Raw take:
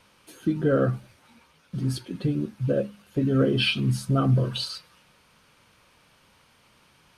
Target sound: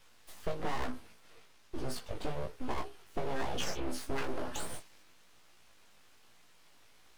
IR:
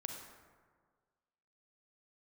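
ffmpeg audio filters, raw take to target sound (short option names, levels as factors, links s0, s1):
-filter_complex "[0:a]aeval=exprs='abs(val(0))':c=same,flanger=delay=16.5:depth=3.1:speed=1.1,acrossover=split=550|3200[s0][s1][s2];[s0]acompressor=threshold=0.02:ratio=4[s3];[s1]acompressor=threshold=0.01:ratio=4[s4];[s2]acompressor=threshold=0.00562:ratio=4[s5];[s3][s4][s5]amix=inputs=3:normalize=0,volume=1.19"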